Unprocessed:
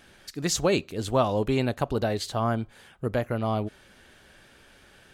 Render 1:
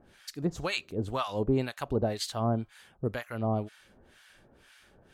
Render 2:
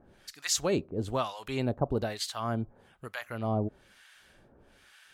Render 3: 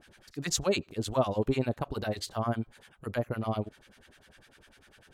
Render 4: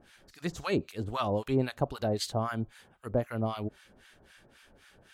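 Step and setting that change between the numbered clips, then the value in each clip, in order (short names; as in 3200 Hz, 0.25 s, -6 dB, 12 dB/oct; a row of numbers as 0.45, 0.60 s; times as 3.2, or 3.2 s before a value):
harmonic tremolo, rate: 2, 1.1, 10, 3.8 Hz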